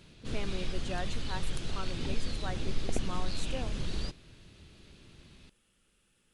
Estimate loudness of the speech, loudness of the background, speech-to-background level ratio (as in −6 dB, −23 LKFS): −43.0 LKFS, −38.5 LKFS, −4.5 dB